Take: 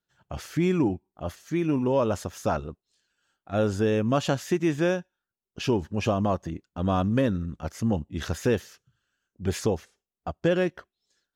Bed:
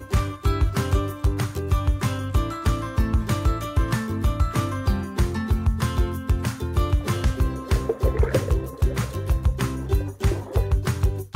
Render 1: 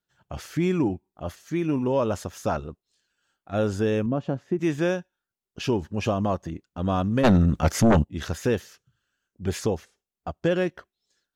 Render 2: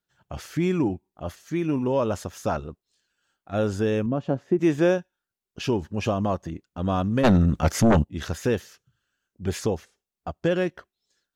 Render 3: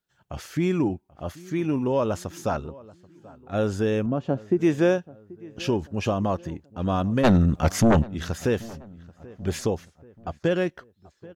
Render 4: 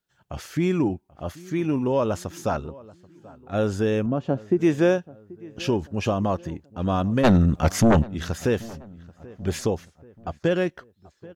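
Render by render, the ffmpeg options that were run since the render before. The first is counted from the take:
-filter_complex "[0:a]asettb=1/sr,asplit=3[a][b][c];[a]atrim=end=4.064[d];[b]atrim=start=4.06:end=4.59,asetpts=PTS-STARTPTS,afade=t=in:d=0.004:c=qsin,afade=t=out:st=0.526:d=0.004:c=qsin,bandpass=f=230:t=q:w=0.6[e];[c]atrim=start=4.586[f];[d][e]acrossfade=d=0.004:c1=hsin:c2=qsin[g];[g][f]acrossfade=d=0.004:c1=qsin:c2=hsin,asplit=3[h][i][j];[h]afade=t=out:st=7.23:d=0.02[k];[i]aeval=exprs='0.237*sin(PI/2*3.16*val(0)/0.237)':c=same,afade=t=in:st=7.23:d=0.02,afade=t=out:st=8.03:d=0.02[l];[j]afade=t=in:st=8.03:d=0.02[m];[k][l][m]amix=inputs=3:normalize=0"
-filter_complex "[0:a]asettb=1/sr,asplit=3[a][b][c];[a]atrim=end=4.304[d];[b]atrim=start=4.3:end=4.98,asetpts=PTS-STARTPTS,afade=t=in:d=0.004:c=qsin,afade=t=out:st=0.676:d=0.004:c=qsin,equalizer=f=480:t=o:w=2.2:g=5[e];[c]atrim=start=4.976[f];[d][e]acrossfade=d=0.004:c1=hsin:c2=qsin[g];[g][f]acrossfade=d=0.004:c1=qsin:c2=hsin"
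-filter_complex "[0:a]asplit=2[a][b];[b]adelay=784,lowpass=f=1.7k:p=1,volume=-21dB,asplit=2[c][d];[d]adelay=784,lowpass=f=1.7k:p=1,volume=0.48,asplit=2[e][f];[f]adelay=784,lowpass=f=1.7k:p=1,volume=0.48[g];[a][c][e][g]amix=inputs=4:normalize=0"
-af "volume=1dB"

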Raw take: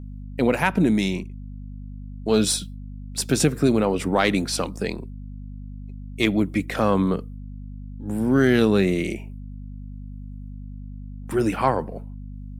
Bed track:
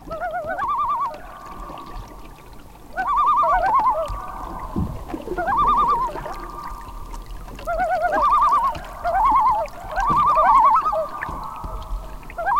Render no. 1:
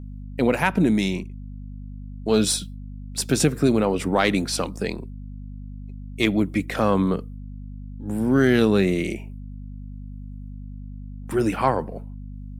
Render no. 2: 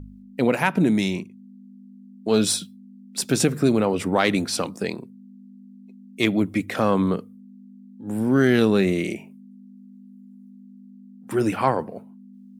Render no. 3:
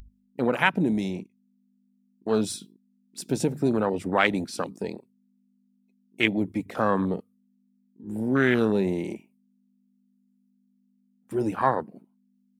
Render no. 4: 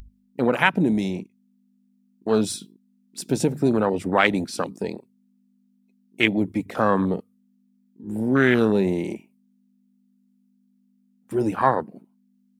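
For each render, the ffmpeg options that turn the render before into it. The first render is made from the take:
-af anull
-af "bandreject=f=50:t=h:w=4,bandreject=f=100:t=h:w=4,bandreject=f=150:t=h:w=4"
-af "afwtdn=0.0562,tiltshelf=f=1.1k:g=-5.5"
-af "volume=3.5dB,alimiter=limit=-2dB:level=0:latency=1"

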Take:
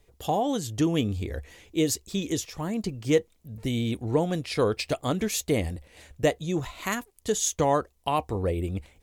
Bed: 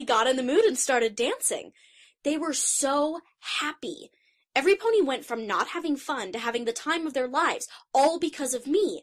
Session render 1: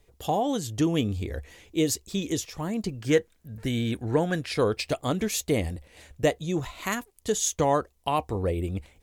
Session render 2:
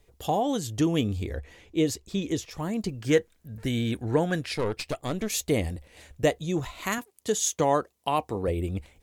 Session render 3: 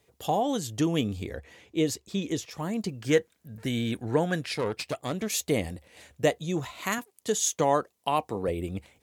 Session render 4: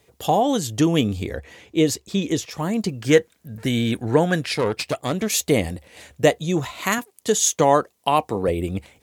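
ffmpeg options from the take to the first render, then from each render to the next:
-filter_complex "[0:a]asettb=1/sr,asplit=3[a][b][c];[a]atrim=end=3.014[d];[b]atrim=start=3.01:end=4.52,asetpts=PTS-STARTPTS,afade=t=in:d=0.004:c=qsin,afade=t=out:st=1.506:d=0.004:c=qsin,equalizer=f=1.6k:w=3.9:g=13.5[e];[c]atrim=start=4.516[f];[d][e]acrossfade=d=0.004:c1=hsin:c2=qsin[g];[g][f]acrossfade=d=0.004:c1=qsin:c2=hsin"
-filter_complex "[0:a]asettb=1/sr,asplit=3[a][b][c];[a]atrim=end=1.334[d];[b]atrim=start=1.33:end=2.51,asetpts=PTS-STARTPTS,afade=t=in:d=0.004:c=qsin,afade=t=out:st=1.176:d=0.004:c=qsin,aemphasis=mode=reproduction:type=cd[e];[c]atrim=start=2.506[f];[d][e]acrossfade=d=0.004:c1=hsin:c2=qsin[g];[g][f]acrossfade=d=0.004:c1=qsin:c2=hsin,asettb=1/sr,asplit=3[h][i][j];[h]atrim=end=4.554[k];[i]atrim=start=4.55:end=5.3,asetpts=PTS-STARTPTS,afade=t=in:d=0.004:c=qsin,afade=t=out:st=0.746:d=0.004:c=qsin,aeval=exprs='(tanh(12.6*val(0)+0.7)-tanh(0.7))/12.6':c=same[l];[j]atrim=start=5.296[m];[k][l]acrossfade=d=0.004:c1=hsin:c2=qsin[n];[n][m]acrossfade=d=0.004:c1=qsin:c2=hsin,asettb=1/sr,asplit=3[o][p][q];[o]atrim=end=6.984[r];[p]atrim=start=6.98:end=8.48,asetpts=PTS-STARTPTS,afade=t=in:d=0.004:c=qsin,afade=t=out:st=1.496:d=0.004:c=qsin,highpass=130[s];[q]atrim=start=8.476[t];[r][s]acrossfade=d=0.004:c1=hsin:c2=qsin[u];[u][t]acrossfade=d=0.004:c1=qsin:c2=hsin"
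-af "highpass=120,equalizer=f=340:t=o:w=0.77:g=-2"
-af "volume=7.5dB"

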